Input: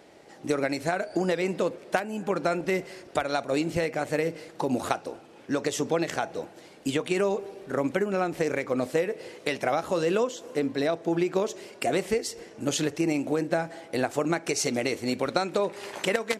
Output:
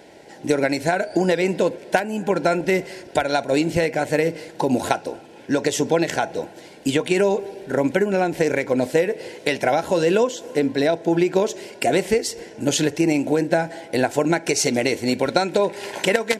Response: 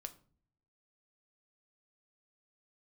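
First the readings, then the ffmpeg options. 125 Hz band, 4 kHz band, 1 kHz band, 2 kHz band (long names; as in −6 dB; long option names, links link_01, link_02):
+7.0 dB, +7.0 dB, +6.5 dB, +7.0 dB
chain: -af "asuperstop=centerf=1200:order=8:qfactor=4.8,volume=7dB"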